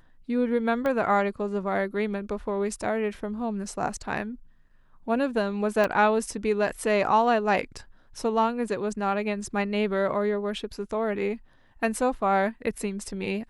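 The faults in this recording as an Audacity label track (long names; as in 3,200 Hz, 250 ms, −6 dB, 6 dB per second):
0.860000	0.860000	click −17 dBFS
5.840000	5.840000	drop-out 2.1 ms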